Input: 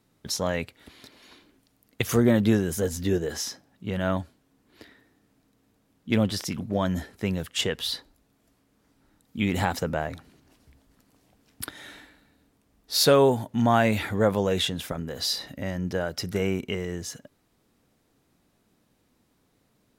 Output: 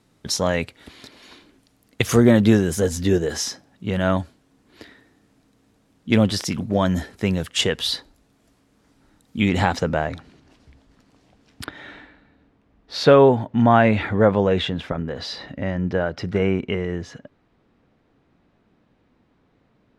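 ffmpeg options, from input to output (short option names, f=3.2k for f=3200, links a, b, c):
-af "asetnsamples=n=441:p=0,asendcmd='9.49 lowpass f 5700;11.64 lowpass f 2600',lowpass=10k,volume=6dB"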